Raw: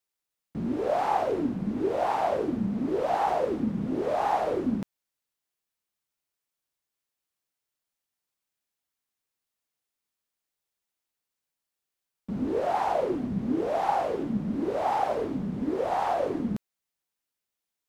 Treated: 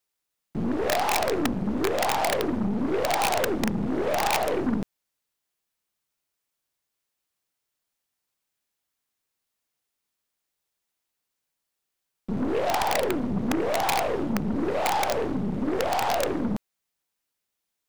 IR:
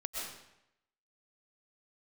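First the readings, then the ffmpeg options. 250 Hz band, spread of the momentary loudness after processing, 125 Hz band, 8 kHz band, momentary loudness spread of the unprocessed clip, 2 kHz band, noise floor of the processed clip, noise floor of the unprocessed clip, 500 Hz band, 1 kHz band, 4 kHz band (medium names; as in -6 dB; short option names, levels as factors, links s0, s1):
+2.0 dB, 5 LU, +3.0 dB, no reading, 6 LU, +10.0 dB, -83 dBFS, under -85 dBFS, +1.5 dB, +0.5 dB, +14.0 dB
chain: -af "aeval=exprs='(mod(7.94*val(0)+1,2)-1)/7.94':c=same,aeval=exprs='0.133*(cos(1*acos(clip(val(0)/0.133,-1,1)))-cos(1*PI/2))+0.0188*(cos(3*acos(clip(val(0)/0.133,-1,1)))-cos(3*PI/2))+0.0168*(cos(5*acos(clip(val(0)/0.133,-1,1)))-cos(5*PI/2))+0.0133*(cos(8*acos(clip(val(0)/0.133,-1,1)))-cos(8*PI/2))':c=same,volume=1.33"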